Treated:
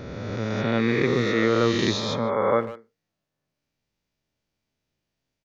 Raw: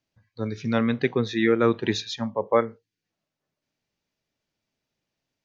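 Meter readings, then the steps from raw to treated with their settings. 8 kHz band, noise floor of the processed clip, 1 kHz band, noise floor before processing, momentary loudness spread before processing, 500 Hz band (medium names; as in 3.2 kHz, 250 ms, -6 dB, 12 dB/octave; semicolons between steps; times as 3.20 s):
no reading, -83 dBFS, +2.0 dB, under -85 dBFS, 11 LU, +1.0 dB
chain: reverse spectral sustain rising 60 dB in 2.26 s; bass shelf 110 Hz +9.5 dB; speakerphone echo 150 ms, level -14 dB; trim -4 dB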